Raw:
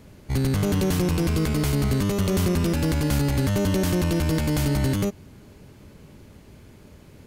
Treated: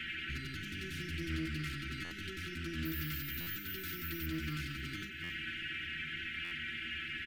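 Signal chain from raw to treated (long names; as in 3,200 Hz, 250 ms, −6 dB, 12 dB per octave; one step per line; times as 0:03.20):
in parallel at −8 dB: sine wavefolder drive 11 dB, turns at −10.5 dBFS
0:00.60–0:01.30: on the sum: parametric band 1,100 Hz −13.5 dB 1.9 octaves
brickwall limiter −16.5 dBFS, peak gain reduction 6.5 dB
noise in a band 1,500–3,100 Hz −37 dBFS
0:02.85–0:04.26: bad sample-rate conversion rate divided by 3×, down none, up zero stuff
three-way crossover with the lows and the highs turned down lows −13 dB, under 390 Hz, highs −14 dB, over 4,100 Hz
repeating echo 271 ms, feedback 49%, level −17 dB
downward compressor 4 to 1, threshold −35 dBFS, peak gain reduction 12 dB
brick-wall band-stop 390–1,300 Hz
stiff-string resonator 76 Hz, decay 0.24 s, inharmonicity 0.008
buffer that repeats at 0:02.04/0:03.40/0:05.23/0:06.44, samples 512, times 5
highs frequency-modulated by the lows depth 0.12 ms
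level +5 dB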